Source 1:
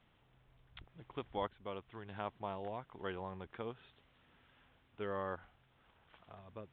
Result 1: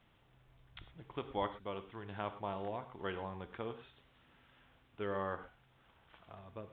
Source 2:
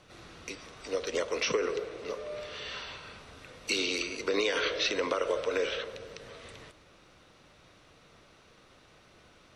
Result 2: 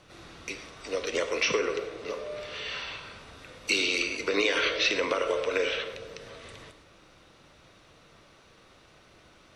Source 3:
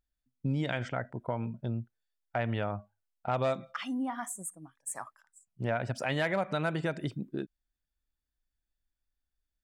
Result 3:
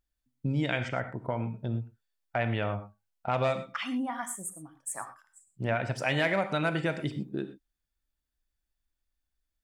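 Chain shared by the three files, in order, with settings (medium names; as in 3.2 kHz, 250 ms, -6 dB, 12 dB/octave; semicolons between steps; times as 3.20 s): dynamic bell 2.4 kHz, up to +5 dB, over -50 dBFS, Q 2.1; gated-style reverb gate 140 ms flat, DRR 9 dB; trim +1.5 dB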